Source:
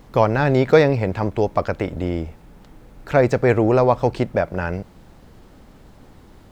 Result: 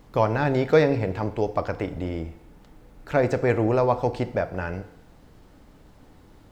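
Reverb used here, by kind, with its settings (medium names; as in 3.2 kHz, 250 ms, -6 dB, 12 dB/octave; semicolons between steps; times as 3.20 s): FDN reverb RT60 0.78 s, low-frequency decay 0.9×, high-frequency decay 0.95×, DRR 10 dB; trim -5.5 dB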